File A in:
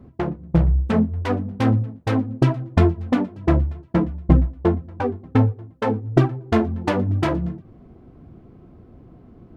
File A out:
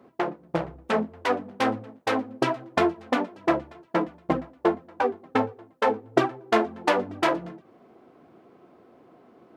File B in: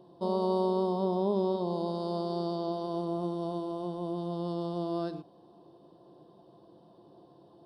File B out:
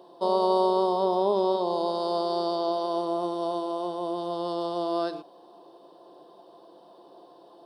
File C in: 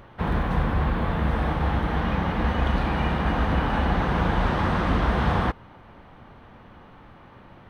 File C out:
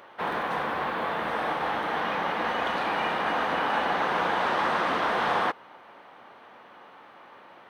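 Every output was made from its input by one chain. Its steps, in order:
HPF 480 Hz 12 dB/oct; match loudness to -27 LUFS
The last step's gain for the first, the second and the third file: +3.0, +9.5, +2.0 dB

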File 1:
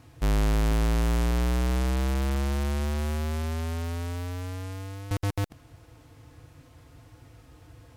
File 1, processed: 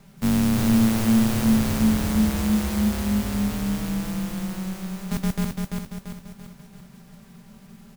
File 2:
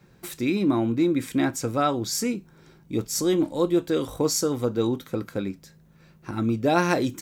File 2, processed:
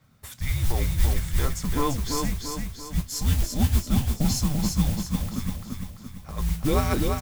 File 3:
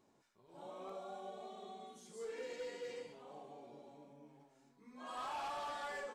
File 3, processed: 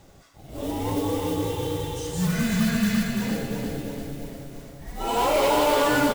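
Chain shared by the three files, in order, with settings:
dynamic EQ 400 Hz, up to +5 dB, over -37 dBFS, Q 1.2; modulation noise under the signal 16 dB; frequency shift -280 Hz; on a send: feedback echo 0.34 s, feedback 48%, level -4 dB; on the sum: normalise peaks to -9 dBFS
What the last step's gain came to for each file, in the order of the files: +1.5, -4.0, +21.0 dB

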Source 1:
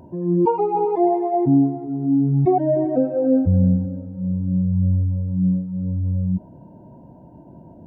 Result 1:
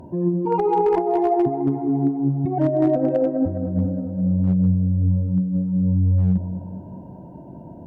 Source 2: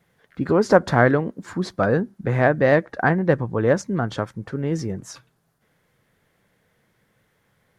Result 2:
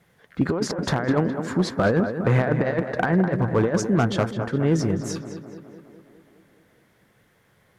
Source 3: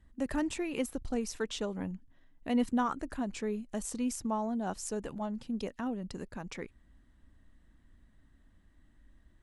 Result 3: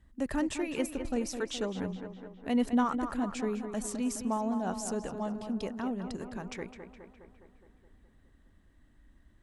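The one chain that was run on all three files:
negative-ratio compressor -20 dBFS, ratio -0.5; tape echo 0.208 s, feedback 68%, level -8 dB, low-pass 2900 Hz; one-sided clip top -13.5 dBFS, bottom -11 dBFS; gain +1 dB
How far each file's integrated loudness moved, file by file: -0.5, -2.0, +2.0 LU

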